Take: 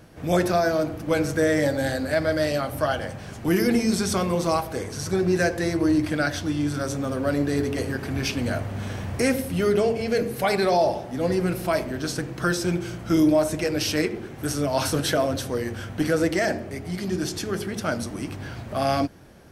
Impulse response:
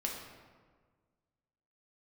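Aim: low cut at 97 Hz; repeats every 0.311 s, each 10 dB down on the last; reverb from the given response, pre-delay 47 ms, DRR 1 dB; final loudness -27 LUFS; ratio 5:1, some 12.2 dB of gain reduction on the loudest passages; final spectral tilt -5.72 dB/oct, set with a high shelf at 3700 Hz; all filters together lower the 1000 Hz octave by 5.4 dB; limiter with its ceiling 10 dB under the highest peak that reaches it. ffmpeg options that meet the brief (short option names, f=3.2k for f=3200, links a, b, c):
-filter_complex "[0:a]highpass=97,equalizer=f=1k:t=o:g=-8,highshelf=f=3.7k:g=-8,acompressor=threshold=-30dB:ratio=5,alimiter=level_in=4dB:limit=-24dB:level=0:latency=1,volume=-4dB,aecho=1:1:311|622|933|1244:0.316|0.101|0.0324|0.0104,asplit=2[a][b];[1:a]atrim=start_sample=2205,adelay=47[c];[b][c]afir=irnorm=-1:irlink=0,volume=-3.5dB[d];[a][d]amix=inputs=2:normalize=0,volume=7dB"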